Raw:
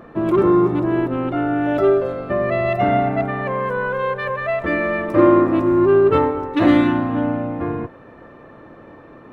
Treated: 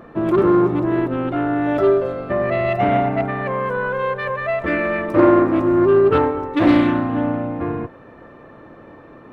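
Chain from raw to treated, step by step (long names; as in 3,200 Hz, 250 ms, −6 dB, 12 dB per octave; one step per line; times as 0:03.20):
highs frequency-modulated by the lows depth 0.23 ms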